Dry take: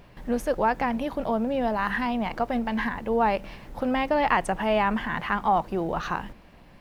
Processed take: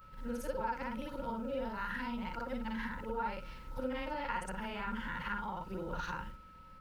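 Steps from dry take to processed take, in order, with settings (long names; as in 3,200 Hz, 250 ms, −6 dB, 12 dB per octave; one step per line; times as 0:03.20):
every overlapping window played backwards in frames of 126 ms
downward compressor 2.5 to 1, threshold −29 dBFS, peak gain reduction 6 dB
guitar amp tone stack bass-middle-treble 6-0-2
hollow resonant body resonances 530/920/1,400 Hz, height 17 dB, ringing for 55 ms
steady tone 1,300 Hz −66 dBFS
level +11 dB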